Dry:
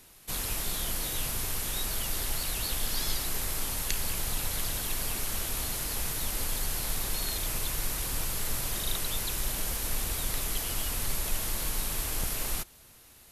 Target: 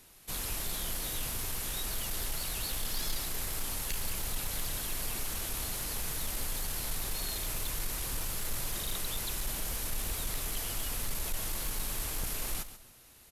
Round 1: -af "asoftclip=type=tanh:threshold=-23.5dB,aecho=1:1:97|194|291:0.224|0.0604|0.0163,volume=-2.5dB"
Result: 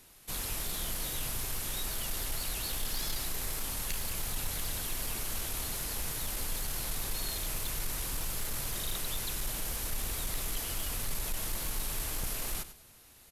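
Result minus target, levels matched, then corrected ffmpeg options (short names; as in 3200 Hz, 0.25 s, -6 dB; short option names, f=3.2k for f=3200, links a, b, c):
echo 39 ms early
-af "asoftclip=type=tanh:threshold=-23.5dB,aecho=1:1:136|272|408:0.224|0.0604|0.0163,volume=-2.5dB"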